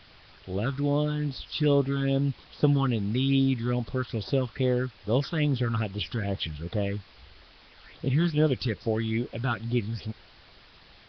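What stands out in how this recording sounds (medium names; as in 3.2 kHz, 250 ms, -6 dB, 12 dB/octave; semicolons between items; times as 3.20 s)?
phasing stages 6, 2.4 Hz, lowest notch 550–2400 Hz; a quantiser's noise floor 8-bit, dither triangular; Nellymoser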